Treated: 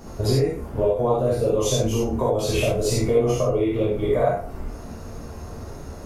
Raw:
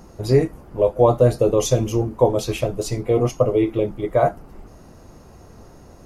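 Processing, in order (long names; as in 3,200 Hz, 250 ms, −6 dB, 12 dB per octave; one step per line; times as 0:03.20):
peak hold with a decay on every bin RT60 0.33 s
downward compressor 12 to 1, threshold −23 dBFS, peak gain reduction 14.5 dB
reverb whose tail is shaped and stops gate 110 ms flat, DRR −5.5 dB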